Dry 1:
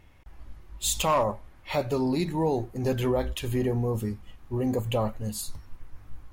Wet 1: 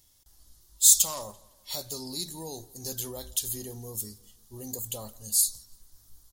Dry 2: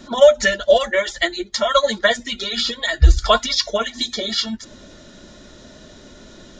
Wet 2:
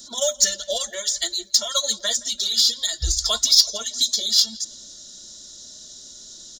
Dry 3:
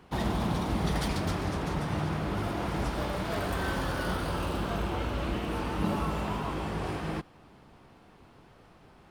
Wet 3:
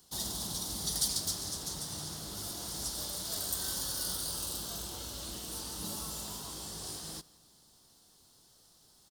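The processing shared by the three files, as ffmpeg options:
-filter_complex "[0:a]asplit=2[s0][s1];[s1]adelay=169,lowpass=f=4100:p=1,volume=0.0794,asplit=2[s2][s3];[s3]adelay=169,lowpass=f=4100:p=1,volume=0.47,asplit=2[s4][s5];[s5]adelay=169,lowpass=f=4100:p=1,volume=0.47[s6];[s0][s2][s4][s6]amix=inputs=4:normalize=0,aexciter=amount=12.2:drive=8.8:freq=3800,volume=0.178"

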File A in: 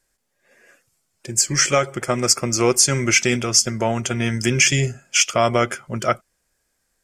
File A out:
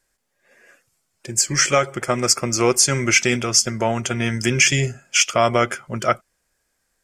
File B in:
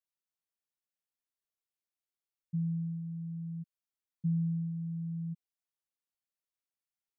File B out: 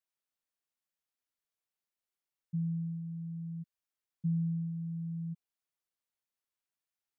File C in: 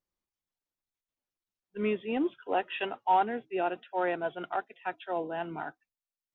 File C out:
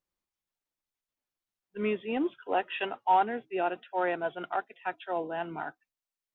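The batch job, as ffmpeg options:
-af "equalizer=f=1400:t=o:w=2.8:g=2.5,volume=0.891"

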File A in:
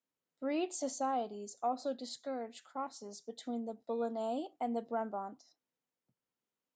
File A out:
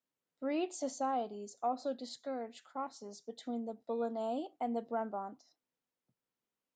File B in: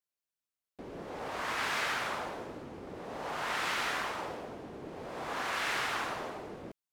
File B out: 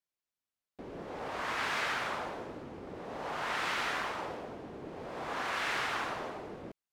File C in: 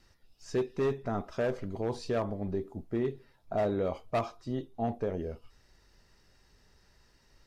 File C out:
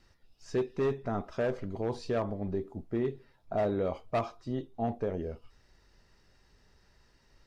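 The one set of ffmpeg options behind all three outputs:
-af "highshelf=f=7200:g=-7.5"

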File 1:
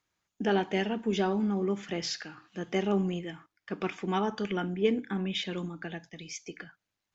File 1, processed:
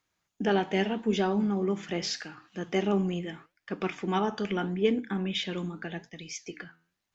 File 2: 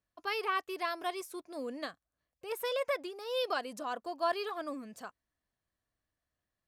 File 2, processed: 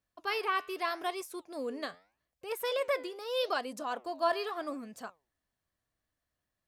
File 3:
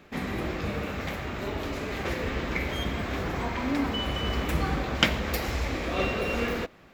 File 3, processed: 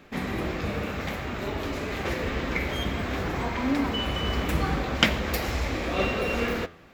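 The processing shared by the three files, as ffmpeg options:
-af "flanger=delay=3.7:depth=8.4:regen=86:speed=0.81:shape=sinusoidal,volume=2"

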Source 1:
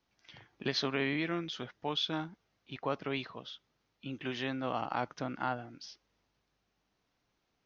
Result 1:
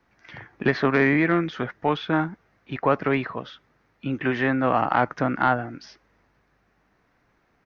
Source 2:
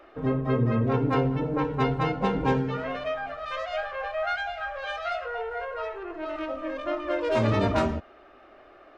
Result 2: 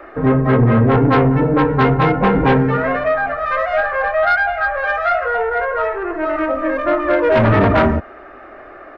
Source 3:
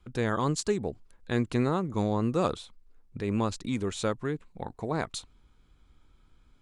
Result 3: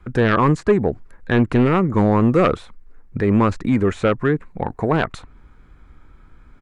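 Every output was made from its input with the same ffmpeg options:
-filter_complex "[0:a]firequalizer=gain_entry='entry(880,0);entry(1800,4);entry(3100,-11)':delay=0.05:min_phase=1,acrossover=split=630|2800[s0][s1][s2];[s2]acompressor=threshold=0.00141:ratio=6[s3];[s0][s1][s3]amix=inputs=3:normalize=0,aeval=exprs='0.282*sin(PI/2*2.24*val(0)/0.282)':c=same,volume=1.41"

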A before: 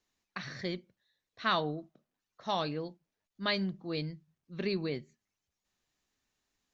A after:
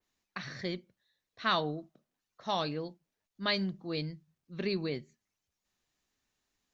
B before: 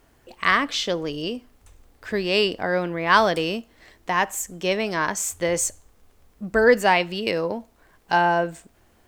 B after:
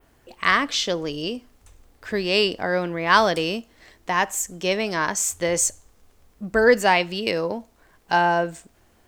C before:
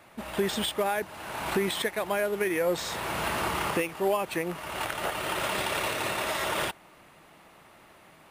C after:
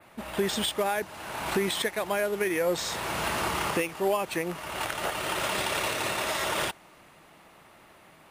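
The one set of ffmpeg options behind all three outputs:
-af "adynamicequalizer=threshold=0.00631:dfrequency=6100:dqfactor=0.99:tfrequency=6100:tqfactor=0.99:attack=5:release=100:ratio=0.375:range=2:mode=boostabove:tftype=bell"

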